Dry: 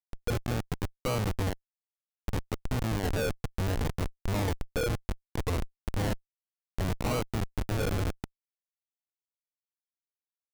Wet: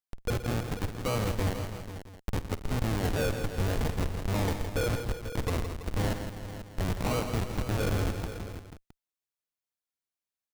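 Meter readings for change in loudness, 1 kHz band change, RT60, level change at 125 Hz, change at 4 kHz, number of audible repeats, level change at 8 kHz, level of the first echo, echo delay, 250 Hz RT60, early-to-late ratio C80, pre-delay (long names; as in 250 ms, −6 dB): +0.5 dB, +1.0 dB, no reverb audible, +1.0 dB, +1.0 dB, 6, +1.5 dB, −16.0 dB, 51 ms, no reverb audible, no reverb audible, no reverb audible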